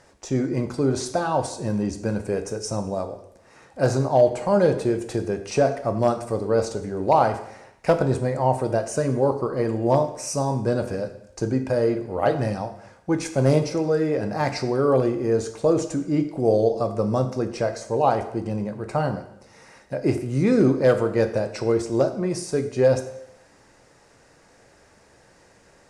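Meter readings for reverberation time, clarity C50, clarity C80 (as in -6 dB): 0.75 s, 11.5 dB, 13.5 dB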